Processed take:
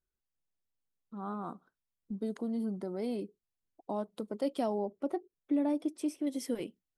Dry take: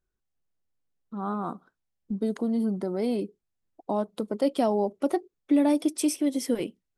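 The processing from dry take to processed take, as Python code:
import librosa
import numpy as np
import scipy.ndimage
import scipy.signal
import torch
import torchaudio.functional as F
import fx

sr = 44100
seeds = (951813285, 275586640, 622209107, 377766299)

y = fx.high_shelf(x, sr, hz=2400.0, db=-11.5, at=(4.78, 6.27))
y = y * librosa.db_to_amplitude(-8.0)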